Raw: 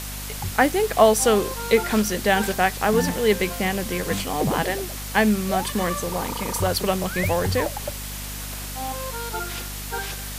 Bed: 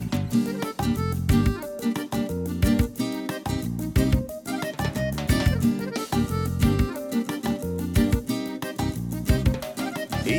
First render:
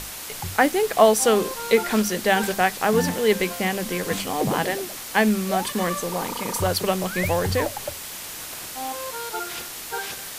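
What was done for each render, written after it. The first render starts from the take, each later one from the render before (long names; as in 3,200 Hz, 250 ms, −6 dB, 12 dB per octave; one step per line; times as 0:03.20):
mains-hum notches 50/100/150/200/250 Hz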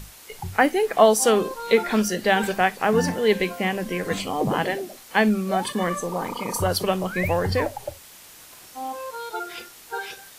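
noise reduction from a noise print 11 dB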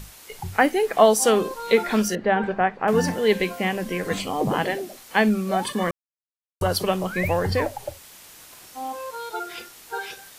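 0:02.15–0:02.88: low-pass filter 1,600 Hz
0:05.91–0:06.61: silence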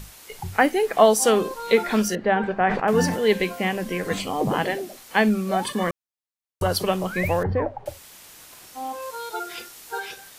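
0:02.59–0:03.18: level that may fall only so fast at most 71 dB per second
0:07.43–0:07.86: low-pass filter 1,200 Hz
0:09.02–0:10.00: bass and treble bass −1 dB, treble +3 dB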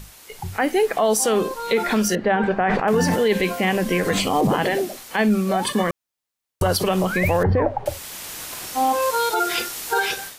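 automatic gain control gain up to 13 dB
brickwall limiter −10.5 dBFS, peak gain reduction 9.5 dB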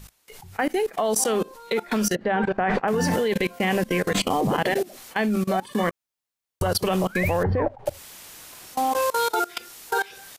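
output level in coarse steps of 22 dB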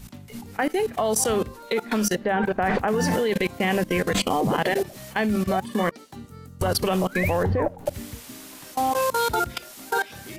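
mix in bed −17 dB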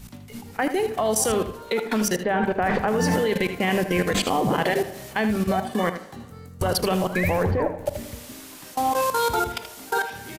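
single-tap delay 79 ms −10.5 dB
spring reverb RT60 1.3 s, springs 36/45/50 ms, chirp 35 ms, DRR 14 dB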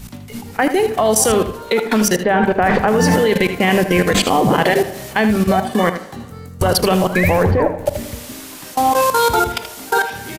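level +8 dB
brickwall limiter −2 dBFS, peak gain reduction 1 dB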